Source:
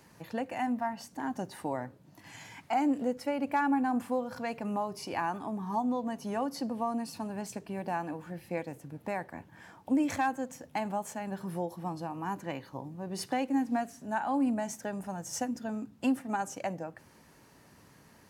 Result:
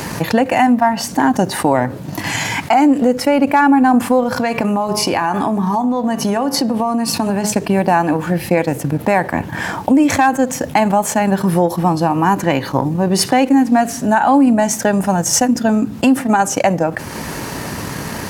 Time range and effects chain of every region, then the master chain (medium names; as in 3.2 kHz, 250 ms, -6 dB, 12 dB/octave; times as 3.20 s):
4.34–7.53 s: de-hum 105.4 Hz, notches 39 + compression 5:1, threshold -38 dBFS
whole clip: transient shaper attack +3 dB, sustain -7 dB; loudness maximiser +21.5 dB; level flattener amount 50%; trim -4.5 dB